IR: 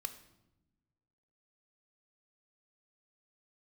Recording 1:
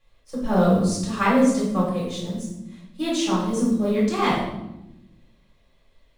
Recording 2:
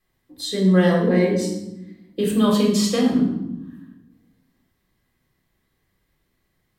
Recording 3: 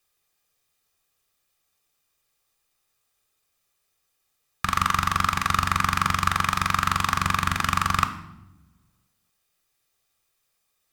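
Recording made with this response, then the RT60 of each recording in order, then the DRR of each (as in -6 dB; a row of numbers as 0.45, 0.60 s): 3; 0.90, 0.90, 1.0 s; -6.5, -1.0, 9.0 dB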